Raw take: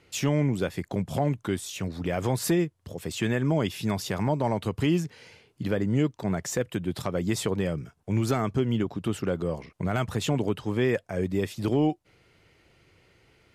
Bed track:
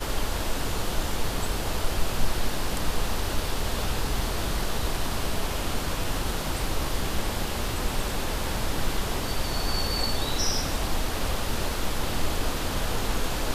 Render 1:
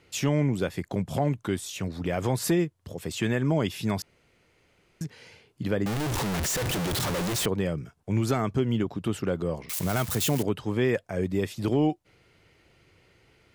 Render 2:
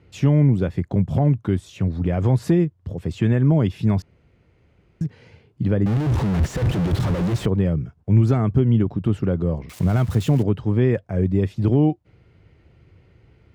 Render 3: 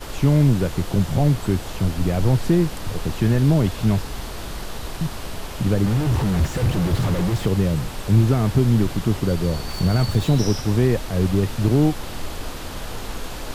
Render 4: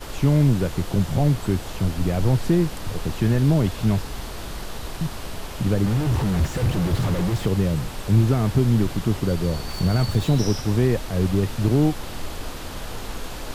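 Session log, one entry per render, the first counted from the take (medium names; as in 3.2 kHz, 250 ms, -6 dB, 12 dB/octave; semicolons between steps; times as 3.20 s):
4.02–5.01 s: room tone; 5.86–7.46 s: one-bit comparator; 9.69–10.43 s: zero-crossing glitches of -21.5 dBFS
high-pass 57 Hz; RIAA curve playback
add bed track -3.5 dB
trim -1.5 dB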